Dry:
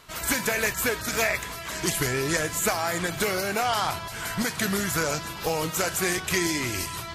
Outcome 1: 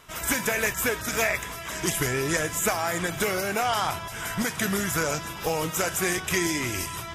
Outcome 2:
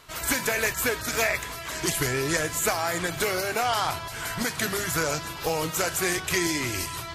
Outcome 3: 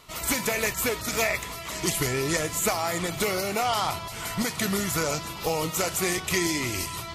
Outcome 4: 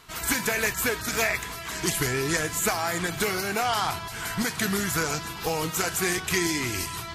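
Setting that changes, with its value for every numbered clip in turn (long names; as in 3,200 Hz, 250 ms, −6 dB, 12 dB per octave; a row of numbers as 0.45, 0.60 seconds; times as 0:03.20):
notch filter, centre frequency: 4,300, 200, 1,600, 570 Hertz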